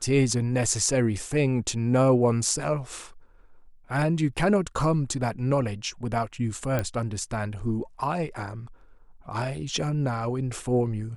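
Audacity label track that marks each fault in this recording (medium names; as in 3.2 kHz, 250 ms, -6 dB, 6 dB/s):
6.790000	6.790000	pop -13 dBFS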